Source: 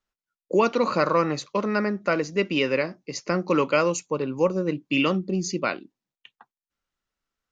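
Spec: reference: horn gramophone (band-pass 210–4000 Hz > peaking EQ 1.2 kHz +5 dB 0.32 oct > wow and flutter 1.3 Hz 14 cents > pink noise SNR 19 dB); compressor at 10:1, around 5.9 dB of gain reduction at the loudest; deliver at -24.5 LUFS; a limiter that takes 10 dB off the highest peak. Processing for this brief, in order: compression 10:1, threshold -21 dBFS; peak limiter -20 dBFS; band-pass 210–4000 Hz; peaking EQ 1.2 kHz +5 dB 0.32 oct; wow and flutter 1.3 Hz 14 cents; pink noise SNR 19 dB; trim +7 dB

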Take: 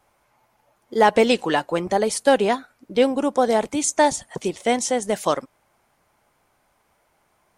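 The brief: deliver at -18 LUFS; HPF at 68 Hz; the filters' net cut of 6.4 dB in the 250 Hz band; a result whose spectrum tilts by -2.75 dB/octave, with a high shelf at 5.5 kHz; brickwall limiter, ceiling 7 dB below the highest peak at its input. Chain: high-pass 68 Hz; peaking EQ 250 Hz -7.5 dB; treble shelf 5.5 kHz -4.5 dB; trim +7 dB; peak limiter -5 dBFS

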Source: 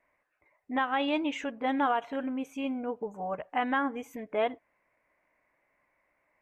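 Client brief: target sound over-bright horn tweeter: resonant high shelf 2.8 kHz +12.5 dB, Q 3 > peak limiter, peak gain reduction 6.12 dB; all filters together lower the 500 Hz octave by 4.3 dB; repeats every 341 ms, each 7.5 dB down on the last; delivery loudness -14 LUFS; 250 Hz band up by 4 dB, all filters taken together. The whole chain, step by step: peaking EQ 250 Hz +6 dB; peaking EQ 500 Hz -6 dB; resonant high shelf 2.8 kHz +12.5 dB, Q 3; feedback delay 341 ms, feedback 42%, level -7.5 dB; trim +17 dB; peak limiter -4.5 dBFS

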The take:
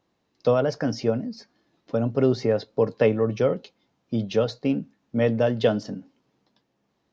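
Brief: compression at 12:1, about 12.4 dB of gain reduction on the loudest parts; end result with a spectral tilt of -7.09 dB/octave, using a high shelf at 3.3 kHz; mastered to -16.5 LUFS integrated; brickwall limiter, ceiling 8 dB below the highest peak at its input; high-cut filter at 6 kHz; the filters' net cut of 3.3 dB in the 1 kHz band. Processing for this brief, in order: low-pass 6 kHz; peaking EQ 1 kHz -4 dB; treble shelf 3.3 kHz -8.5 dB; compression 12:1, threshold -28 dBFS; trim +20.5 dB; peak limiter -5 dBFS

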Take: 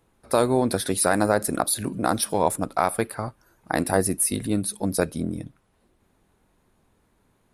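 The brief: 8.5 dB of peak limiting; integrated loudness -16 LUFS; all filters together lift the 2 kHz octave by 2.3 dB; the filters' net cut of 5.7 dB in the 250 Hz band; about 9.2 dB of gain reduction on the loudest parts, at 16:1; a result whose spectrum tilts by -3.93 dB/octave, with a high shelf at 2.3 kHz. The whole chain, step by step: peaking EQ 250 Hz -7.5 dB; peaking EQ 2 kHz +5.5 dB; treble shelf 2.3 kHz -4.5 dB; compression 16:1, threshold -25 dBFS; trim +17.5 dB; peak limiter -1.5 dBFS

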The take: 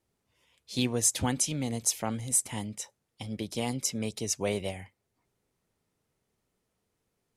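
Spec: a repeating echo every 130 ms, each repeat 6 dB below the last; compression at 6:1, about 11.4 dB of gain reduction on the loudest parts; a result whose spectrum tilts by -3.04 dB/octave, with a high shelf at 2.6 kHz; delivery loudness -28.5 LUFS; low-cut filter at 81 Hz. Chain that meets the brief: high-pass 81 Hz; treble shelf 2.6 kHz +5 dB; compression 6:1, threshold -29 dBFS; feedback delay 130 ms, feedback 50%, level -6 dB; trim +4 dB

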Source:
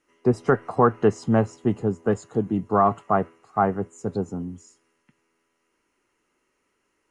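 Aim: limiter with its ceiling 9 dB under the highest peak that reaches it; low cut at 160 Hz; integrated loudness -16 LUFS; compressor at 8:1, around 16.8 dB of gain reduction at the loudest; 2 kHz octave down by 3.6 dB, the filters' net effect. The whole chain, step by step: high-pass 160 Hz; peaking EQ 2 kHz -5.5 dB; compression 8:1, threshold -32 dBFS; trim +25 dB; peak limiter -3 dBFS

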